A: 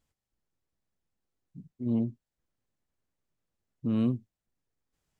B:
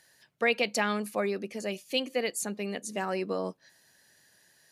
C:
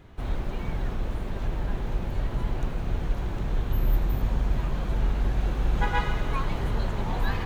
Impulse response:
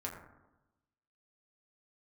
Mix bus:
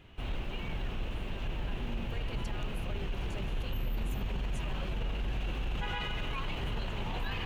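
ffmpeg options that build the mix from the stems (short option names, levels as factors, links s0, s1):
-filter_complex "[0:a]volume=0.299[s0];[1:a]adelay=1700,volume=0.224[s1];[2:a]equalizer=f=2800:t=o:w=0.54:g=14.5,volume=0.501[s2];[s0][s1]amix=inputs=2:normalize=0,alimiter=level_in=4.73:limit=0.0631:level=0:latency=1,volume=0.211,volume=1[s3];[s2][s3]amix=inputs=2:normalize=0,alimiter=level_in=1.41:limit=0.0631:level=0:latency=1:release=13,volume=0.708"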